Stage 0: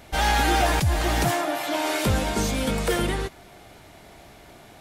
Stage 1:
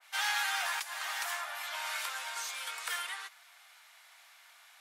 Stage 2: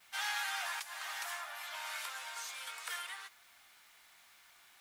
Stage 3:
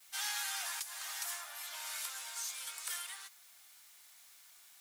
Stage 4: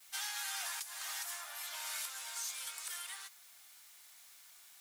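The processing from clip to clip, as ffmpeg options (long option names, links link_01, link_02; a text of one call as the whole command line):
ffmpeg -i in.wav -af "highpass=frequency=1100:width=0.5412,highpass=frequency=1100:width=1.3066,adynamicequalizer=threshold=0.0158:dfrequency=1800:dqfactor=0.7:tfrequency=1800:tqfactor=0.7:attack=5:release=100:ratio=0.375:range=2:mode=cutabove:tftype=highshelf,volume=-5dB" out.wav
ffmpeg -i in.wav -filter_complex "[0:a]acrossover=split=2300[link_01][link_02];[link_02]acompressor=mode=upward:threshold=-59dB:ratio=2.5[link_03];[link_01][link_03]amix=inputs=2:normalize=0,acrusher=bits=9:mix=0:aa=0.000001,volume=-5dB" out.wav
ffmpeg -i in.wav -af "bass=frequency=250:gain=-1,treble=frequency=4000:gain=13,volume=-5.5dB" out.wav
ffmpeg -i in.wav -af "alimiter=level_in=6dB:limit=-24dB:level=0:latency=1:release=279,volume=-6dB,volume=1dB" out.wav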